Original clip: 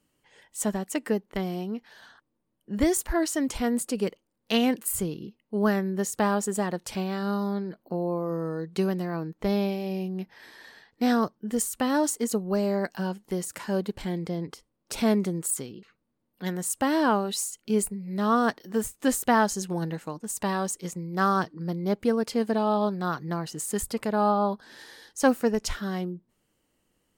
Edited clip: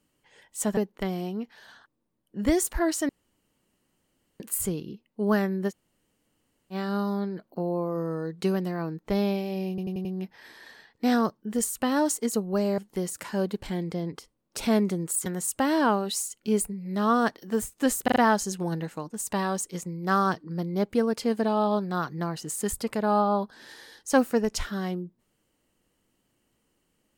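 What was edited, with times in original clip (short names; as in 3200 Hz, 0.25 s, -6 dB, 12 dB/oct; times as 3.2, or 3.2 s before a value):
0.77–1.11 cut
3.43–4.74 room tone
6.04–7.07 room tone, crossfade 0.06 s
10.03 stutter 0.09 s, 5 plays
12.76–13.13 cut
15.61–16.48 cut
19.26 stutter 0.04 s, 4 plays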